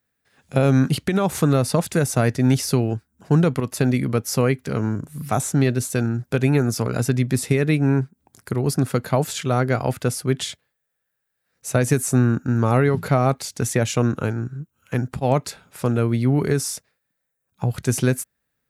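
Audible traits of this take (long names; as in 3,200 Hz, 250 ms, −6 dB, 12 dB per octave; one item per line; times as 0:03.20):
background noise floor −77 dBFS
spectral slope −6.0 dB per octave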